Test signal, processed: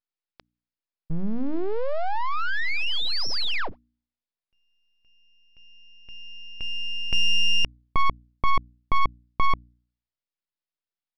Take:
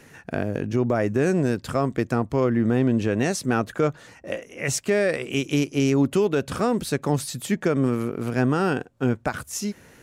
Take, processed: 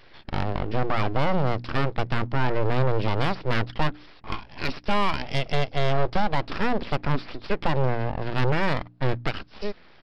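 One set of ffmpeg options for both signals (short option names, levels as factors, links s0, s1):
-af "aresample=11025,aeval=exprs='abs(val(0))':c=same,aresample=44100,bandreject=f=59.8:t=h:w=4,bandreject=f=119.6:t=h:w=4,bandreject=f=179.4:t=h:w=4,bandreject=f=239.2:t=h:w=4,bandreject=f=299:t=h:w=4,aeval=exprs='0.282*(cos(1*acos(clip(val(0)/0.282,-1,1)))-cos(1*PI/2))+0.0158*(cos(6*acos(clip(val(0)/0.282,-1,1)))-cos(6*PI/2))':c=same"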